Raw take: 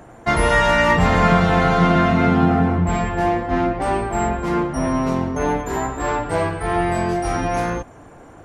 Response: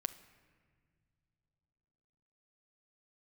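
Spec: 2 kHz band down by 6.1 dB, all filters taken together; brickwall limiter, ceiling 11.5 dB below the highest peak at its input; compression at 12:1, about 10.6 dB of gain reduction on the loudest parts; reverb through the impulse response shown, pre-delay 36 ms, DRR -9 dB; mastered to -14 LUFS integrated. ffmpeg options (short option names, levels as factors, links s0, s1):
-filter_complex "[0:a]equalizer=f=2000:t=o:g=-7.5,acompressor=threshold=0.0794:ratio=12,alimiter=level_in=1.06:limit=0.0631:level=0:latency=1,volume=0.944,asplit=2[s0][s1];[1:a]atrim=start_sample=2205,adelay=36[s2];[s1][s2]afir=irnorm=-1:irlink=0,volume=2.99[s3];[s0][s3]amix=inputs=2:normalize=0,volume=2.99"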